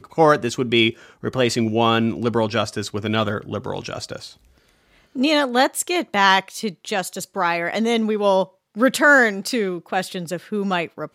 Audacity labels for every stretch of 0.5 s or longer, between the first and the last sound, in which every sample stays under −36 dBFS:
4.320000	5.150000	silence